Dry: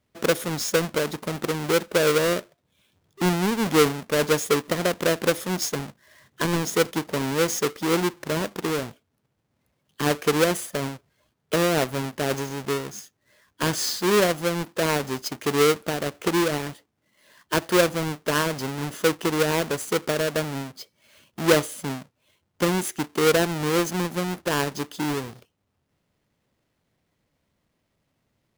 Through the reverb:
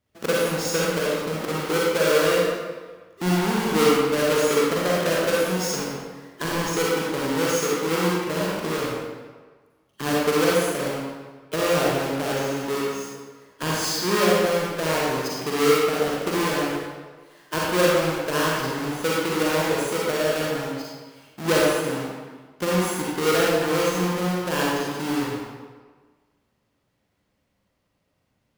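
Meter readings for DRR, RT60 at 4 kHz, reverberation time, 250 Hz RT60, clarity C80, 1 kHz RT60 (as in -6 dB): -6.0 dB, 1.0 s, 1.5 s, 1.2 s, -0.5 dB, 1.5 s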